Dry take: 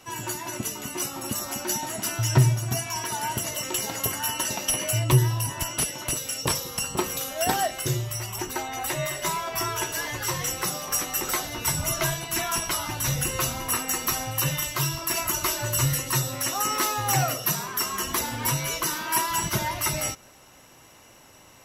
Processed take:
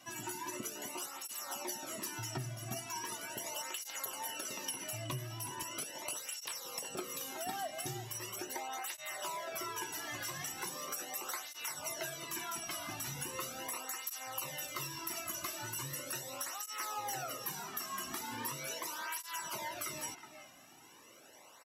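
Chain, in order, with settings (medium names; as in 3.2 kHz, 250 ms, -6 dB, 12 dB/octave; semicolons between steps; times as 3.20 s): bass shelf 150 Hz -9.5 dB; compression 5:1, threshold -32 dBFS, peak gain reduction 13.5 dB; speakerphone echo 370 ms, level -9 dB; cancelling through-zero flanger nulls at 0.39 Hz, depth 2.3 ms; trim -3.5 dB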